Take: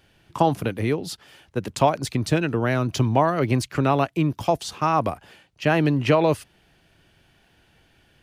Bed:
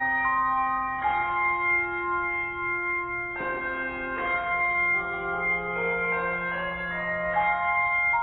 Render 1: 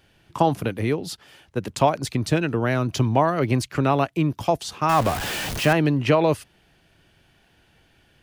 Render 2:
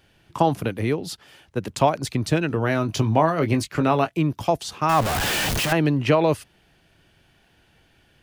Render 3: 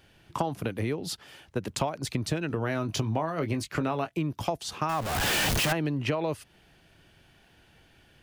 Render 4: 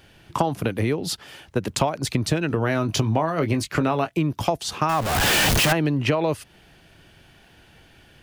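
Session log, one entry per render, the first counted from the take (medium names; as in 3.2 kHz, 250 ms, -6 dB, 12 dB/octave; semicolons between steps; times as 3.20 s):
4.89–5.73 s: jump at every zero crossing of -22.5 dBFS
2.48–4.19 s: doubling 19 ms -8.5 dB; 5.03–5.72 s: one-bit comparator
compression 5:1, threshold -26 dBFS, peak gain reduction 13 dB
trim +7 dB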